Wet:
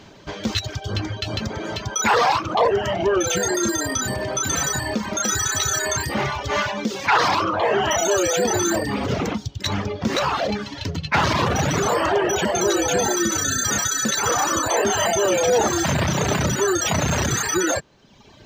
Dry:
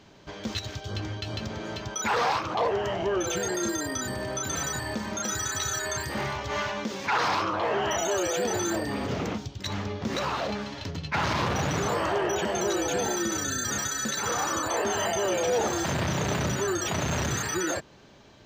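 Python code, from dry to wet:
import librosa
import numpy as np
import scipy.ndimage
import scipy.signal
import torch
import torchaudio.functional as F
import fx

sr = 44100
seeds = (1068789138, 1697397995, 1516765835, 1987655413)

y = fx.dereverb_blind(x, sr, rt60_s=1.0)
y = F.gain(torch.from_numpy(y), 9.0).numpy()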